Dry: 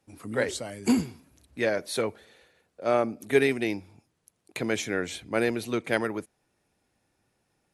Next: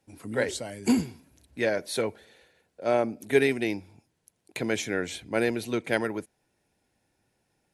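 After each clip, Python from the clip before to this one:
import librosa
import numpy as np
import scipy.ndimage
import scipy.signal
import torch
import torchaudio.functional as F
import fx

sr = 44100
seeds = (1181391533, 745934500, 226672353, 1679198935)

y = fx.notch(x, sr, hz=1200.0, q=6.5)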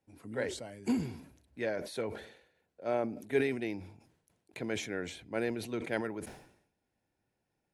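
y = fx.high_shelf(x, sr, hz=3500.0, db=-7.5)
y = fx.sustainer(y, sr, db_per_s=83.0)
y = y * librosa.db_to_amplitude(-8.0)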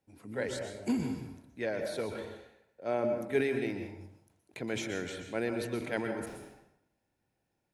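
y = fx.rev_plate(x, sr, seeds[0], rt60_s=0.73, hf_ratio=0.6, predelay_ms=110, drr_db=5.5)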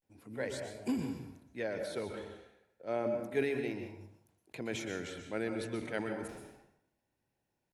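y = fx.vibrato(x, sr, rate_hz=0.31, depth_cents=73.0)
y = y * librosa.db_to_amplitude(-3.0)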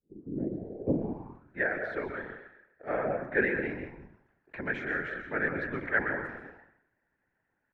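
y = fx.filter_sweep_lowpass(x, sr, from_hz=280.0, to_hz=1700.0, start_s=0.61, end_s=1.58, q=6.5)
y = fx.whisperise(y, sr, seeds[1])
y = y * librosa.db_to_amplitude(1.5)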